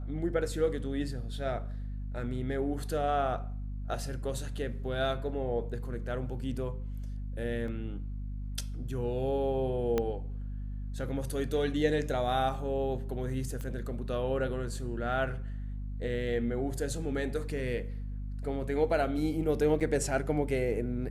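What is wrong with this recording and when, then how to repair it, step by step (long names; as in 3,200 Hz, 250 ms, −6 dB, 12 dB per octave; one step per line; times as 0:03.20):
mains hum 50 Hz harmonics 5 −37 dBFS
0:07.68: drop-out 2.1 ms
0:09.98: click −16 dBFS
0:13.61: click −26 dBFS
0:19.80–0:19.81: drop-out 6.7 ms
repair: click removal
hum removal 50 Hz, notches 5
repair the gap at 0:07.68, 2.1 ms
repair the gap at 0:19.80, 6.7 ms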